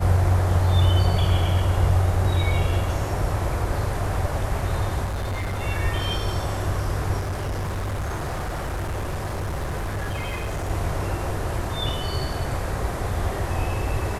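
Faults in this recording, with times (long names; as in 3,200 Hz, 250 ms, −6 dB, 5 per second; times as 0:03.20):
0:05.04–0:05.63: clipping −24 dBFS
0:07.19–0:10.71: clipping −24 dBFS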